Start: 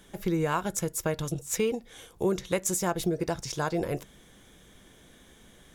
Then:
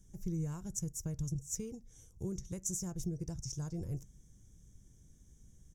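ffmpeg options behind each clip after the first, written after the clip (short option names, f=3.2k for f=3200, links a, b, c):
-af "firequalizer=gain_entry='entry(110,0);entry(220,-13);entry(580,-26);entry(1400,-29);entry(4100,-29);entry(5800,-5);entry(10000,-16)':delay=0.05:min_phase=1,volume=1.5dB"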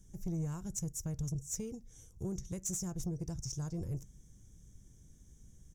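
-af "asoftclip=type=tanh:threshold=-31.5dB,volume=2dB"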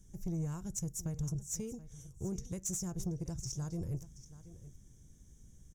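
-af "aecho=1:1:729:0.158"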